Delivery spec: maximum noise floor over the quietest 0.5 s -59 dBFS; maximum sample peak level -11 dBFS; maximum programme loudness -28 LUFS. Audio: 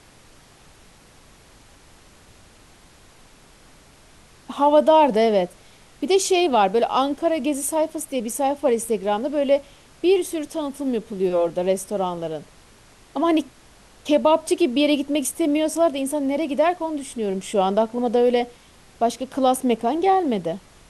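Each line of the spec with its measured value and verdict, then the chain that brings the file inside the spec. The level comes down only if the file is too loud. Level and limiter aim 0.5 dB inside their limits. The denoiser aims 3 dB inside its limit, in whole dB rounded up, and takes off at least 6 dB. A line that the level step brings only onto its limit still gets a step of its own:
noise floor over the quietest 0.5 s -51 dBFS: fail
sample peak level -6.0 dBFS: fail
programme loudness -21.5 LUFS: fail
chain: denoiser 6 dB, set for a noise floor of -51 dBFS; gain -7 dB

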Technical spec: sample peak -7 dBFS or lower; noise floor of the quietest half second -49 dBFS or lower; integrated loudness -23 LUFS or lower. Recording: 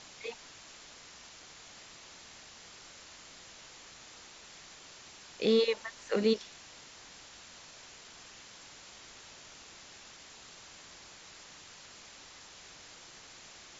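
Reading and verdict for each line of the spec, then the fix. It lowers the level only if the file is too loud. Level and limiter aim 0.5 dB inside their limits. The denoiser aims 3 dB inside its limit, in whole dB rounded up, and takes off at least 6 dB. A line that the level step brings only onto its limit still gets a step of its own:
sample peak -15.5 dBFS: OK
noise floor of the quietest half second -53 dBFS: OK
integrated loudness -37.5 LUFS: OK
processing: none

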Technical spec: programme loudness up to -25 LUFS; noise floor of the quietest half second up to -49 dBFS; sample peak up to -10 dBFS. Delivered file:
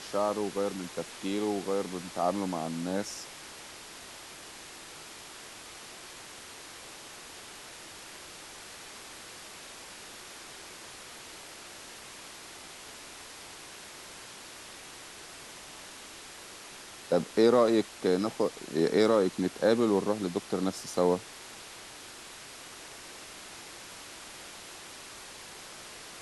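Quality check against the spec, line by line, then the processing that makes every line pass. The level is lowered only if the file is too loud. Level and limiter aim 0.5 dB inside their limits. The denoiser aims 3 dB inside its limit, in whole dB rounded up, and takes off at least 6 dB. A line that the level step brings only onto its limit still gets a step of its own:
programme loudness -30.5 LUFS: OK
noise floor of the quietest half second -47 dBFS: fail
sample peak -11.0 dBFS: OK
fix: denoiser 6 dB, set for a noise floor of -47 dBFS

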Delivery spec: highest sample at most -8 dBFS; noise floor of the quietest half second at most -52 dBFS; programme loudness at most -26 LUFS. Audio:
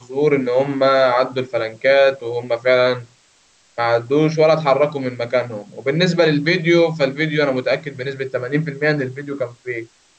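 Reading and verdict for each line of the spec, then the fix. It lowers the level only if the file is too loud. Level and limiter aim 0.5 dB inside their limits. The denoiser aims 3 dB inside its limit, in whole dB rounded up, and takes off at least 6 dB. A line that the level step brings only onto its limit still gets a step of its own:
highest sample -3.5 dBFS: fail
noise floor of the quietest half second -56 dBFS: OK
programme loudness -18.0 LUFS: fail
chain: gain -8.5 dB

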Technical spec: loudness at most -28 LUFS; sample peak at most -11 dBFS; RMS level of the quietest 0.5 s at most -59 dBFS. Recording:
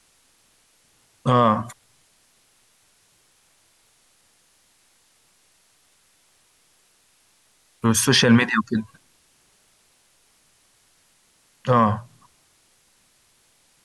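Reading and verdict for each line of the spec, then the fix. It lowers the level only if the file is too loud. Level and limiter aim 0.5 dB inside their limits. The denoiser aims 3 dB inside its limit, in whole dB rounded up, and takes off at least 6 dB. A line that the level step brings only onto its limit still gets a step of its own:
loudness -20.0 LUFS: fail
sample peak -5.5 dBFS: fail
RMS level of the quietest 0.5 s -61 dBFS: OK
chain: gain -8.5 dB

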